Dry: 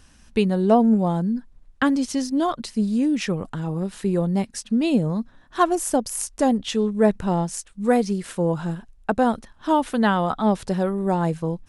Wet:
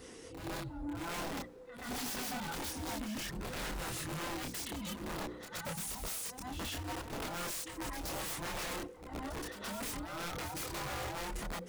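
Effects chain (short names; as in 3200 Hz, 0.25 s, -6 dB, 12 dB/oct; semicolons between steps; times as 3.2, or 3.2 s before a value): band inversion scrambler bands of 500 Hz; HPF 47 Hz 24 dB/oct; low shelf 91 Hz +9.5 dB; notches 60/120/180/240/300/360 Hz; harmonic-percussive split harmonic -16 dB; low shelf 250 Hz +7.5 dB; negative-ratio compressor -37 dBFS, ratio -1; wrapped overs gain 29.5 dB; chorus voices 4, 0.26 Hz, delay 27 ms, depth 3.4 ms; soft clip -39.5 dBFS, distortion -11 dB; reverse echo 0.123 s -8.5 dB; on a send at -23.5 dB: reverb RT60 3.7 s, pre-delay 38 ms; on the sum: gain +3 dB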